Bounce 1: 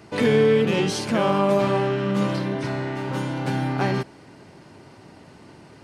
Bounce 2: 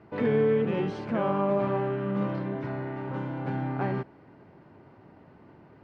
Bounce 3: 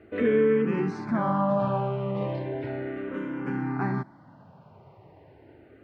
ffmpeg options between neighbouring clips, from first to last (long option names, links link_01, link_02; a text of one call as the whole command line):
ffmpeg -i in.wav -af "lowpass=1700,volume=-6dB" out.wav
ffmpeg -i in.wav -filter_complex "[0:a]asplit=2[link_01][link_02];[link_02]afreqshift=-0.35[link_03];[link_01][link_03]amix=inputs=2:normalize=1,volume=4dB" out.wav